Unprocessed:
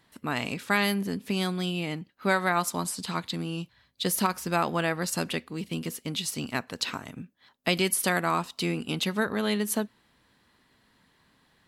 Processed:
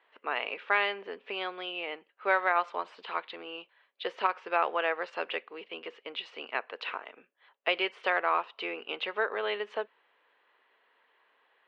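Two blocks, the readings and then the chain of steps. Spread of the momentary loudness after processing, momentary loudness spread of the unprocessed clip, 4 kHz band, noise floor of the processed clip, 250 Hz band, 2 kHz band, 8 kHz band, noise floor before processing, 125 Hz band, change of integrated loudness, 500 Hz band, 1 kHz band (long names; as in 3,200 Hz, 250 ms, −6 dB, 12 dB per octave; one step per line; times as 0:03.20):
14 LU, 9 LU, −5.0 dB, −71 dBFS, −17.0 dB, −0.5 dB, below −35 dB, −66 dBFS, below −30 dB, −3.5 dB, −2.0 dB, −0.5 dB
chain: elliptic band-pass filter 440–2,900 Hz, stop band 60 dB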